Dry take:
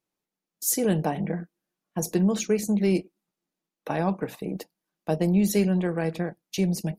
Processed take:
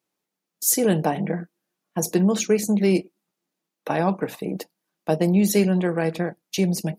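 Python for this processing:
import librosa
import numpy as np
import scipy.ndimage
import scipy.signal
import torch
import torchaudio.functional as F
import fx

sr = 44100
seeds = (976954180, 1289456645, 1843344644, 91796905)

y = fx.highpass(x, sr, hz=160.0, slope=6)
y = y * 10.0 ** (5.0 / 20.0)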